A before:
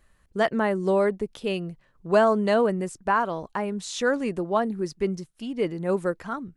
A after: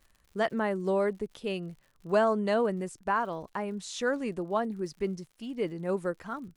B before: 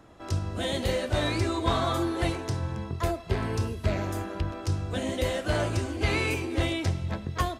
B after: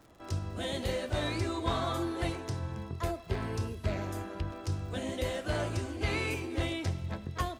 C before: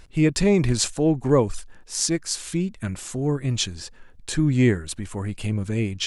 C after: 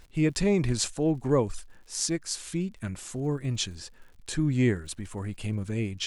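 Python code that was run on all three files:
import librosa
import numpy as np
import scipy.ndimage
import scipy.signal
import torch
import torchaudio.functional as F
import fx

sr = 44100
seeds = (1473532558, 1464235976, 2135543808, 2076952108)

y = fx.dmg_crackle(x, sr, seeds[0], per_s=90.0, level_db=-43.0)
y = F.gain(torch.from_numpy(y), -5.5).numpy()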